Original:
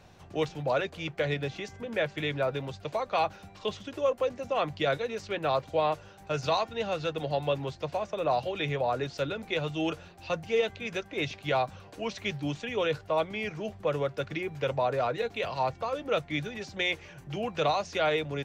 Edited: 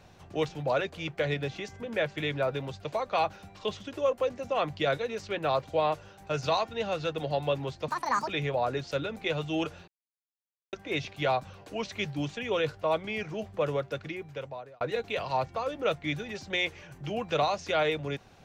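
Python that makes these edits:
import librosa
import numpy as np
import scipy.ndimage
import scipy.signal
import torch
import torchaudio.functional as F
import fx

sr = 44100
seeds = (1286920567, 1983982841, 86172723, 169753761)

y = fx.edit(x, sr, fx.speed_span(start_s=7.88, length_s=0.66, speed=1.66),
    fx.silence(start_s=10.14, length_s=0.85),
    fx.fade_out_span(start_s=13.99, length_s=1.08), tone=tone)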